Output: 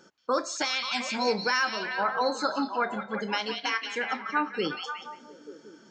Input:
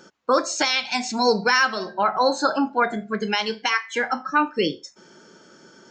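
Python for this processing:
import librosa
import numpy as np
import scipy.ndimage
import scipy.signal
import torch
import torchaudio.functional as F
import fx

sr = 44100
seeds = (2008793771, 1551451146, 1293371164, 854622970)

y = fx.echo_stepped(x, sr, ms=178, hz=3400.0, octaves=-0.7, feedback_pct=70, wet_db=-2)
y = F.gain(torch.from_numpy(y), -7.5).numpy()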